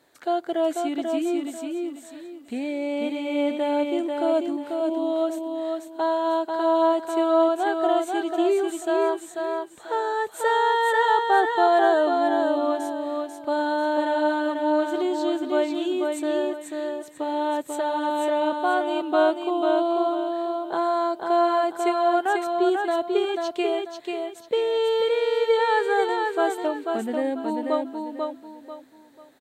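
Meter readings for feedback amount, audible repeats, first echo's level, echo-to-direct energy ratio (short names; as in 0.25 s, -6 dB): 30%, 3, -4.0 dB, -3.5 dB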